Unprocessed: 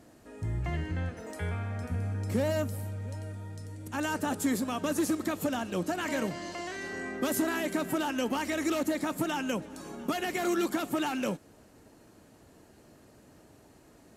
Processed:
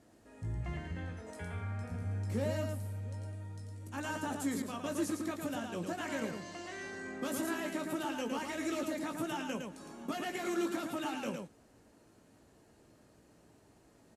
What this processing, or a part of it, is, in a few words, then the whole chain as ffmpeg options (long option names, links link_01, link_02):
slapback doubling: -filter_complex "[0:a]asplit=3[link_01][link_02][link_03];[link_02]adelay=18,volume=-7dB[link_04];[link_03]adelay=111,volume=-4.5dB[link_05];[link_01][link_04][link_05]amix=inputs=3:normalize=0,asettb=1/sr,asplit=3[link_06][link_07][link_08];[link_06]atrim=end=4.624[link_09];[link_07]atrim=start=4.62:end=5.42,asetpts=PTS-STARTPTS,afade=type=in:duration=0.004:curve=qsin,afade=type=out:start_time=0.796:duration=0.004:curve=qsin,agate=range=-33dB:threshold=-29dB:ratio=3:detection=peak[link_10];[link_08]atrim=start=5.416[link_11];[link_09][link_10]acrossfade=duration=0.004:curve1=hsin:curve2=qsin[link_12];[link_12][link_11]acrossfade=duration=0.004:curve1=qsin:curve2=hsin,lowpass=frequency=12000:width=0.5412,lowpass=frequency=12000:width=1.3066,volume=-8dB"